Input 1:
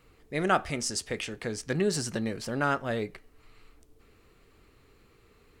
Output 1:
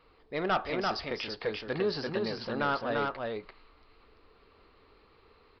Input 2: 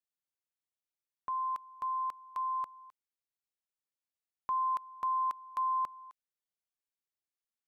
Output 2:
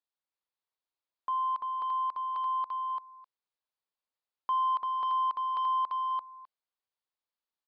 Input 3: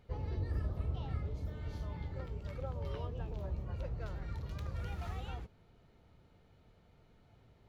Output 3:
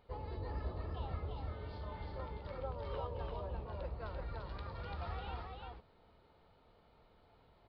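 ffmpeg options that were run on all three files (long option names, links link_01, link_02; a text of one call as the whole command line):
ffmpeg -i in.wav -af "equalizer=frequency=125:width_type=o:width=1:gain=-5,equalizer=frequency=500:width_type=o:width=1:gain=4,equalizer=frequency=1000:width_type=o:width=1:gain=9,equalizer=frequency=4000:width_type=o:width=1:gain=5,aresample=11025,asoftclip=type=tanh:threshold=-16.5dB,aresample=44100,aecho=1:1:341:0.708,volume=-5dB" out.wav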